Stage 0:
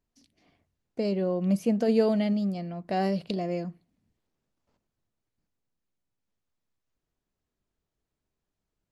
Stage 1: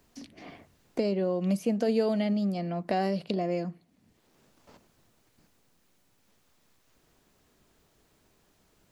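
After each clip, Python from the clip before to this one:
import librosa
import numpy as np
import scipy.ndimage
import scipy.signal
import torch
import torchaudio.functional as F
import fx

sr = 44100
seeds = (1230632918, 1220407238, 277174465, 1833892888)

y = fx.low_shelf(x, sr, hz=120.0, db=-8.5)
y = fx.band_squash(y, sr, depth_pct=70)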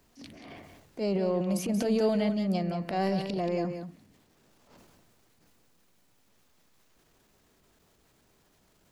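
y = fx.transient(x, sr, attack_db=-11, sustain_db=8)
y = y + 10.0 ** (-8.5 / 20.0) * np.pad(y, (int(181 * sr / 1000.0), 0))[:len(y)]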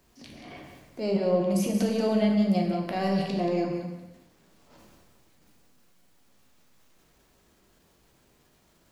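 y = fx.rev_plate(x, sr, seeds[0], rt60_s=0.98, hf_ratio=0.85, predelay_ms=0, drr_db=1.0)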